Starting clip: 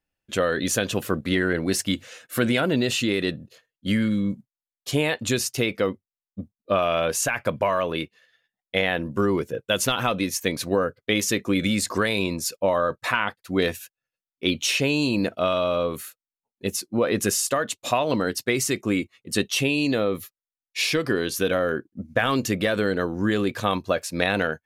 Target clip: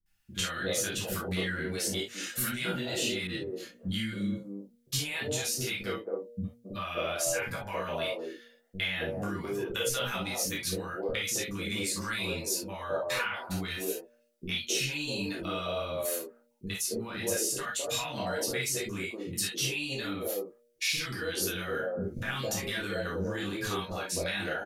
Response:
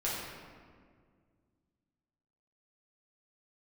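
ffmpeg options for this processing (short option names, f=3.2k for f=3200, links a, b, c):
-filter_complex "[0:a]highshelf=f=3.1k:g=8,bandreject=f=118.6:t=h:w=4,bandreject=f=237.2:t=h:w=4,bandreject=f=355.8:t=h:w=4,bandreject=f=474.4:t=h:w=4,bandreject=f=593:t=h:w=4,acompressor=threshold=-34dB:ratio=10,acrossover=split=280|840[a][b][c];[c]adelay=60[d];[b]adelay=270[e];[a][e][d]amix=inputs=3:normalize=0[f];[1:a]atrim=start_sample=2205,atrim=end_sample=3528[g];[f][g]afir=irnorm=-1:irlink=0,asettb=1/sr,asplit=3[h][i][j];[h]atrim=end=3.274[k];[i]atrim=start=3.27:end=5.43,asetpts=PTS-STARTPTS,afade=t=in:d=0.004:c=qsin,afade=t=out:st=2.156:d=0.004:c=qsin,adynamicequalizer=threshold=0.00251:dfrequency=2000:dqfactor=0.7:tfrequency=2000:tqfactor=0.7:attack=5:release=100:ratio=0.375:range=1.5:mode=cutabove:tftype=highshelf[l];[j]atrim=start=5.426[m];[k][l]acrossfade=d=0.004:c1=hsin:c2=qsin[n];[n][m]acrossfade=d=0.004:c1=qsin:c2=hsin,volume=3dB"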